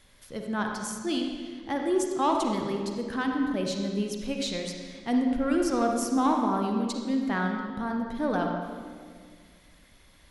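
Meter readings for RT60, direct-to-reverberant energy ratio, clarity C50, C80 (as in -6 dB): 1.9 s, 1.5 dB, 2.5 dB, 4.0 dB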